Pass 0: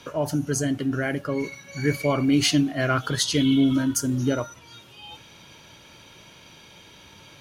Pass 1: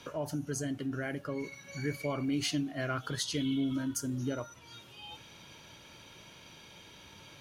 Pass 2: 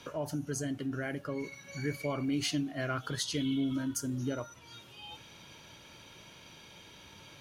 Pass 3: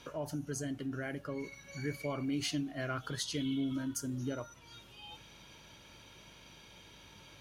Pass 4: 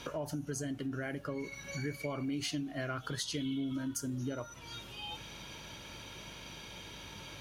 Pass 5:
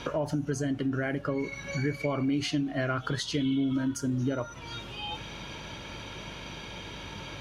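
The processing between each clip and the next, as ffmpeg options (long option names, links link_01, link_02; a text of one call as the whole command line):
ffmpeg -i in.wav -af "acompressor=threshold=-38dB:ratio=1.5,volume=-4.5dB" out.wav
ffmpeg -i in.wav -af anull out.wav
ffmpeg -i in.wav -af "aeval=exprs='val(0)+0.000708*(sin(2*PI*50*n/s)+sin(2*PI*2*50*n/s)/2+sin(2*PI*3*50*n/s)/3+sin(2*PI*4*50*n/s)/4+sin(2*PI*5*50*n/s)/5)':channel_layout=same,volume=-3dB" out.wav
ffmpeg -i in.wav -af "acompressor=threshold=-46dB:ratio=2.5,volume=8dB" out.wav
ffmpeg -i in.wav -af "aemphasis=mode=reproduction:type=50fm,volume=8dB" out.wav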